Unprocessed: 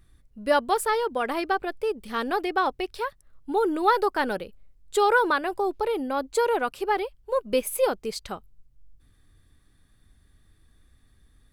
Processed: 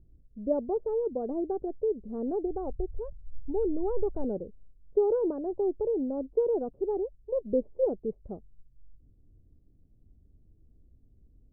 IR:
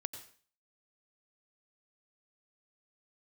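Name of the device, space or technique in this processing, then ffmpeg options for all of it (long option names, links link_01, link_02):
under water: -filter_complex "[0:a]asplit=3[link_01][link_02][link_03];[link_01]afade=type=out:start_time=2.45:duration=0.02[link_04];[link_02]asubboost=boost=9:cutoff=100,afade=type=in:start_time=2.45:duration=0.02,afade=type=out:start_time=4.23:duration=0.02[link_05];[link_03]afade=type=in:start_time=4.23:duration=0.02[link_06];[link_04][link_05][link_06]amix=inputs=3:normalize=0,lowpass=frequency=470:width=0.5412,lowpass=frequency=470:width=1.3066,equalizer=frequency=690:width_type=o:width=0.53:gain=5"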